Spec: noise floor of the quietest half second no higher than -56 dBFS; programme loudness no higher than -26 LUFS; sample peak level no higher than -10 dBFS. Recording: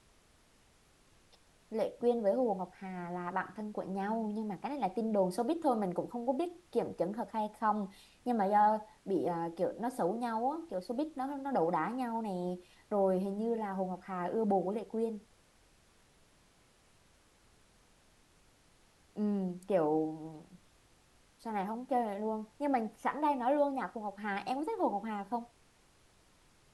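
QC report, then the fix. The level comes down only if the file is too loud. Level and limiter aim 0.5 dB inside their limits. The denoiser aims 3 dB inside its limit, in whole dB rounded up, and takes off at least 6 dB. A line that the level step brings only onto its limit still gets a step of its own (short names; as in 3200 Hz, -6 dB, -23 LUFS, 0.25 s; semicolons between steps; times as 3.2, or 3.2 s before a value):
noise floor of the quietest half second -66 dBFS: OK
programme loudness -35.0 LUFS: OK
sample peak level -18.0 dBFS: OK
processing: none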